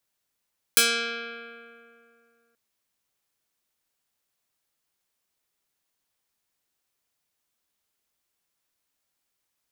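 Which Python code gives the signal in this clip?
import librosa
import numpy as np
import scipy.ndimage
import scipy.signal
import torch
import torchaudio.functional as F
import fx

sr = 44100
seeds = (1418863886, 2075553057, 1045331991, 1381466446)

y = fx.pluck(sr, length_s=1.78, note=58, decay_s=2.56, pick=0.25, brightness='medium')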